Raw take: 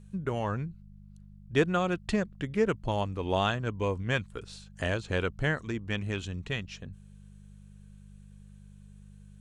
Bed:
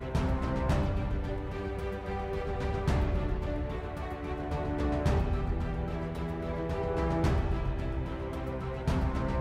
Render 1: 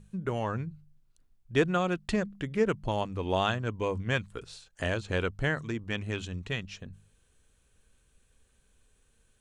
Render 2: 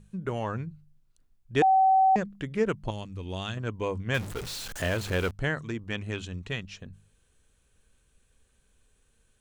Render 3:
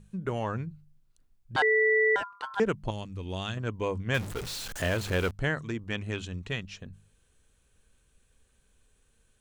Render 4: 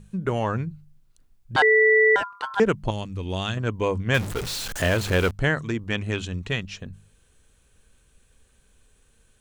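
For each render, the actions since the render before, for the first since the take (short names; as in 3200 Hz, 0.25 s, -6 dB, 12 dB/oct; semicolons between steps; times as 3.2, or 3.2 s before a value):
de-hum 50 Hz, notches 4
1.62–2.16 bleep 764 Hz -17 dBFS; 2.9–3.57 bell 820 Hz -12.5 dB 2.8 oct; 4.14–5.31 zero-crossing step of -33 dBFS
1.56–2.6 ring modulator 1200 Hz
gain +6.5 dB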